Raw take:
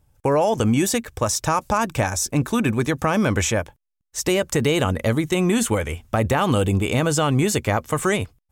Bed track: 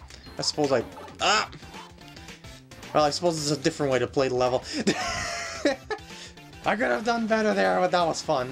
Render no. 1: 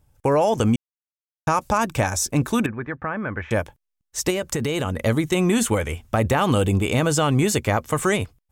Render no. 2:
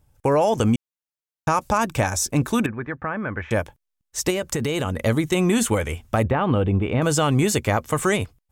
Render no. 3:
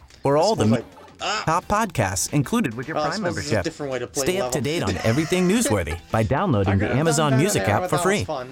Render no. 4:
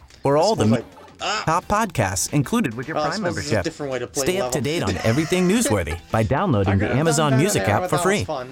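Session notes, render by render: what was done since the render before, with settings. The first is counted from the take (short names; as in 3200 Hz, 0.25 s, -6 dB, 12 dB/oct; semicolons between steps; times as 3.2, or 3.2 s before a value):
0.76–1.47 mute; 2.66–3.51 ladder low-pass 2000 Hz, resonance 50%; 4.3–5.01 compressor 4:1, threshold -20 dBFS
6.23–7.02 air absorption 470 m
add bed track -3 dB
gain +1 dB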